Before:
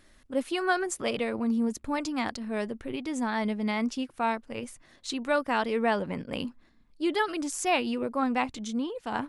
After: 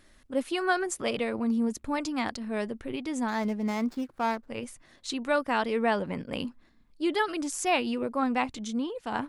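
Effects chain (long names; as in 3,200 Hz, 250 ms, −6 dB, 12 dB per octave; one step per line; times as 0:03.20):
0:03.28–0:04.49: running median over 15 samples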